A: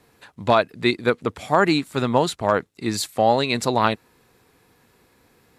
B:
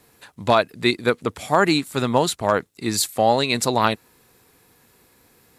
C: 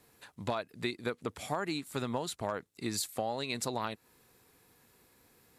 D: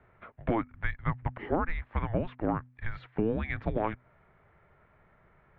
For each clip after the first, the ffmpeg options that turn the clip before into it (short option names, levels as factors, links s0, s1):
-af "highshelf=f=6400:g=10.5"
-af "acompressor=threshold=0.0708:ratio=6,volume=0.398"
-af "highpass=f=270:t=q:w=0.5412,highpass=f=270:t=q:w=1.307,lowpass=f=2500:t=q:w=0.5176,lowpass=f=2500:t=q:w=0.7071,lowpass=f=2500:t=q:w=1.932,afreqshift=-340,bandreject=f=125:t=h:w=4,bandreject=f=250:t=h:w=4,volume=2.11"